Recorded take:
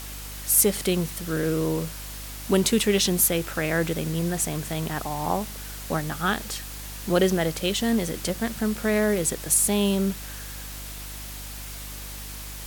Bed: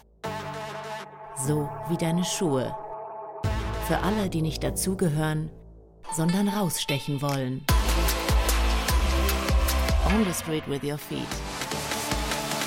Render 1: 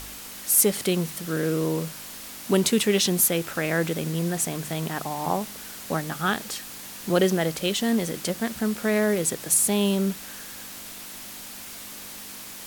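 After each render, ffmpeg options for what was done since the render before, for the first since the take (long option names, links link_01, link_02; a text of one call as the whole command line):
ffmpeg -i in.wav -af "bandreject=frequency=50:width_type=h:width=4,bandreject=frequency=100:width_type=h:width=4,bandreject=frequency=150:width_type=h:width=4" out.wav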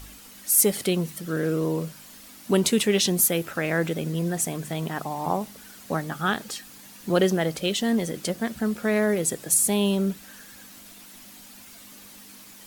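ffmpeg -i in.wav -af "afftdn=noise_reduction=9:noise_floor=-40" out.wav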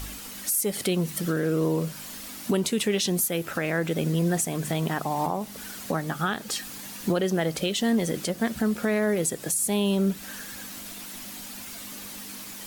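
ffmpeg -i in.wav -filter_complex "[0:a]asplit=2[link_01][link_02];[link_02]acompressor=threshold=-31dB:ratio=6,volume=2dB[link_03];[link_01][link_03]amix=inputs=2:normalize=0,alimiter=limit=-15.5dB:level=0:latency=1:release=299" out.wav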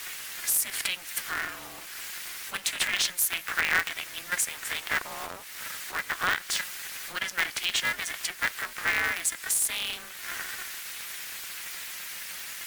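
ffmpeg -i in.wav -af "highpass=frequency=1800:width_type=q:width=2.8,aeval=exprs='val(0)*sgn(sin(2*PI*180*n/s))':channel_layout=same" out.wav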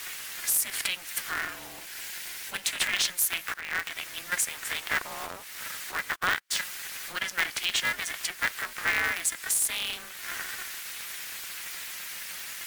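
ffmpeg -i in.wav -filter_complex "[0:a]asettb=1/sr,asplit=3[link_01][link_02][link_03];[link_01]atrim=end=1.534[link_04];[link_02]atrim=start=1.53:end=2.66,asetpts=PTS-STARTPTS,afade=type=in:duration=0.004:curve=qsin,afade=type=out:start_time=1.126:duration=0.004:curve=qsin,equalizer=frequency=1200:width_type=o:width=0.21:gain=-9[link_05];[link_03]atrim=start=2.656[link_06];[link_04][link_05]acrossfade=duration=0.004:curve1=hsin:curve2=qsin[link_07];[link_07][link_06]acrossfade=duration=0.004:curve1=qsin:curve2=hsin,asplit=3[link_08][link_09][link_10];[link_08]afade=type=out:start_time=6.14:duration=0.02[link_11];[link_09]agate=range=-34dB:threshold=-33dB:ratio=16:release=100:detection=peak,afade=type=in:start_time=6.14:duration=0.02,afade=type=out:start_time=6.58:duration=0.02[link_12];[link_10]afade=type=in:start_time=6.58:duration=0.02[link_13];[link_11][link_12][link_13]amix=inputs=3:normalize=0,asplit=2[link_14][link_15];[link_14]atrim=end=3.54,asetpts=PTS-STARTPTS,afade=type=out:start_time=3.536:duration=0.004:curve=hsin:silence=0.112202[link_16];[link_15]atrim=start=3.54,asetpts=PTS-STARTPTS,afade=type=in:duration=0.51:silence=0.112202[link_17];[link_16][link_17]concat=n=2:v=0:a=1" out.wav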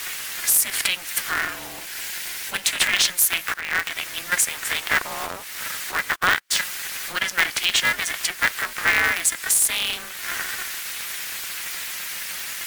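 ffmpeg -i in.wav -af "volume=7.5dB" out.wav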